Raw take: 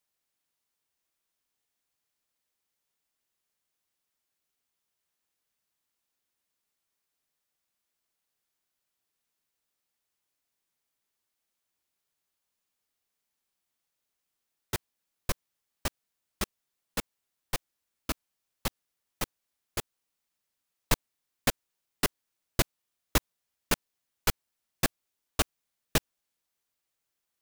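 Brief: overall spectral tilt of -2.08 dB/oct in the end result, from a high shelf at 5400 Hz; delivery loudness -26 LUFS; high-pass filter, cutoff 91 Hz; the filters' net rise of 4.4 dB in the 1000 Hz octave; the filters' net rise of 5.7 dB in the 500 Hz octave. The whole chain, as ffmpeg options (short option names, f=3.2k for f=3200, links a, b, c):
-af "highpass=91,equalizer=f=500:t=o:g=6,equalizer=f=1k:t=o:g=3.5,highshelf=f=5.4k:g=8,volume=3.5dB"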